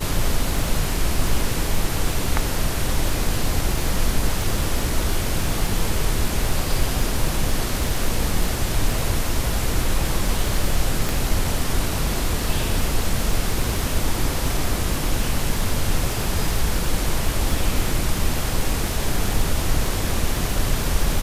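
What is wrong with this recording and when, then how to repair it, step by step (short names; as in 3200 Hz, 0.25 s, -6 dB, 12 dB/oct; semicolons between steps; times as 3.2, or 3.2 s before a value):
crackle 30/s -24 dBFS
11.09 pop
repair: de-click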